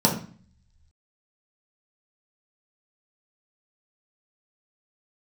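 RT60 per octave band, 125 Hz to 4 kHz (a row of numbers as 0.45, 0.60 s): 1.1, 0.70, 0.40, 0.45, 0.45, 0.40 s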